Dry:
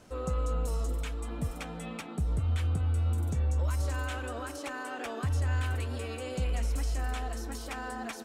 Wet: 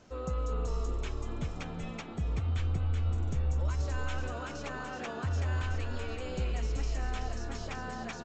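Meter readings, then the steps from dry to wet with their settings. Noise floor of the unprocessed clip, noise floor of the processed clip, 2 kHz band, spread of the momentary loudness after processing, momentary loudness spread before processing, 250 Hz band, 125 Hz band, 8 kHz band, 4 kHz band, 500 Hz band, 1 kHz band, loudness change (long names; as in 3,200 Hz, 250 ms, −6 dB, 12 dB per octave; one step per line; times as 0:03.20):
−42 dBFS, −42 dBFS, −1.5 dB, 7 LU, 8 LU, −1.5 dB, −2.0 dB, −5.0 dB, −1.5 dB, −1.5 dB, −1.5 dB, −2.0 dB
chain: on a send: echo with shifted repeats 378 ms, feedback 39%, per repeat −75 Hz, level −6 dB
on the sum: downsampling to 16,000 Hz
level −2.5 dB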